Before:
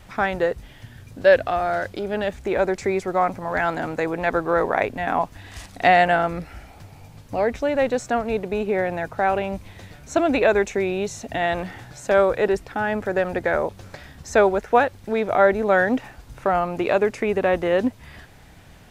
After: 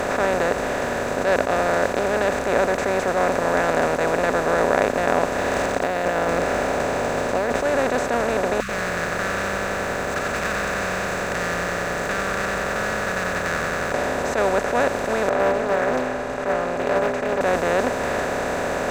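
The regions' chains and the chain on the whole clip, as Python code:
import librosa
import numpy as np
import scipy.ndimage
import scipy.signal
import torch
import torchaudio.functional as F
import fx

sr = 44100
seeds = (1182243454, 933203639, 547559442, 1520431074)

y = fx.chain(x, sr, fx.peak_eq(hz=1400.0, db=-5.0, octaves=1.4),
    fx.over_compress(threshold_db=-30.0, ratio=-1.0),
    fx.resample_linear(factor=3), at=(5.38, 7.62))
y = fx.chain(y, sr, fx.median_filter(points=15),
    fx.brickwall_bandstop(low_hz=200.0, high_hz=1100.0),
    fx.echo_crushed(ms=92, feedback_pct=80, bits=9, wet_db=-8.5), at=(8.6, 13.92))
y = fx.chain(y, sr, fx.lowpass(hz=1700.0, slope=12),
    fx.stiff_resonator(f0_hz=120.0, decay_s=0.33, stiffness=0.03),
    fx.doppler_dist(depth_ms=0.89), at=(15.29, 17.41))
y = fx.bin_compress(y, sr, power=0.2)
y = fx.high_shelf(y, sr, hz=5500.0, db=8.0)
y = fx.attack_slew(y, sr, db_per_s=150.0)
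y = y * librosa.db_to_amplitude(-9.5)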